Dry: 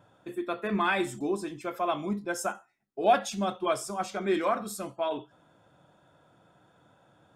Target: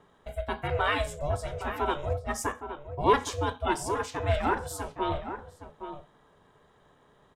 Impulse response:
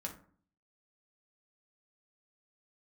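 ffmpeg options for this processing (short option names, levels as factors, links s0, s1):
-filter_complex "[0:a]aeval=exprs='val(0)*sin(2*PI*290*n/s)':c=same,asplit=2[s0][s1];[s1]adelay=816.3,volume=0.355,highshelf=f=4000:g=-18.4[s2];[s0][s2]amix=inputs=2:normalize=0,volume=1.41"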